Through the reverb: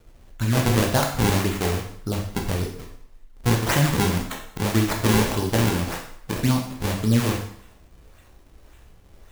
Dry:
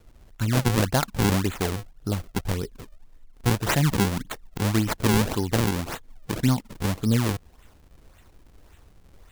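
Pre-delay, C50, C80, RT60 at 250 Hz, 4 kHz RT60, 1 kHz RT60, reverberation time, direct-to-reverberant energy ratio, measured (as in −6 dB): 10 ms, 5.5 dB, 9.0 dB, 0.60 s, 0.65 s, 0.65 s, 0.65 s, 0.5 dB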